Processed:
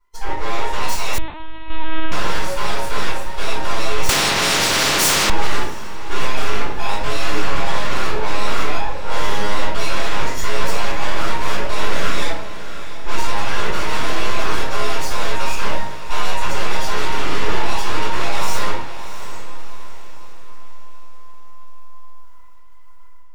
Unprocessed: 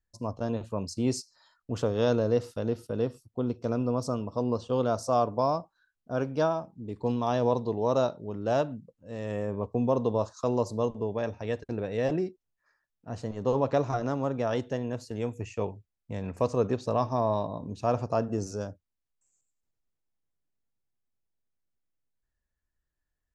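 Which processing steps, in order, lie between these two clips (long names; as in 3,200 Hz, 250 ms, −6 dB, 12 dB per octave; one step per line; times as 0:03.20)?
frequency inversion band by band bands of 1,000 Hz
low-shelf EQ 90 Hz +4 dB
in parallel at 0 dB: downward compressor, threshold −34 dBFS, peak gain reduction 14 dB
on the sum: brickwall limiter −21.5 dBFS, peak gain reduction 11 dB
automatic gain control gain up to 10.5 dB
sine wavefolder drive 13 dB, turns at −11 dBFS
flanger 0.91 Hz, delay 5.7 ms, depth 1.5 ms, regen +87%
half-wave rectification
on a send: feedback delay with all-pass diffusion 674 ms, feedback 45%, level −12 dB
on the sum: rectangular room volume 85 cubic metres, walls mixed, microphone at 3.9 metres
0:01.18–0:02.12: linear-prediction vocoder at 8 kHz pitch kept
0:04.09–0:05.30: every bin compressed towards the loudest bin 4 to 1
level −14.5 dB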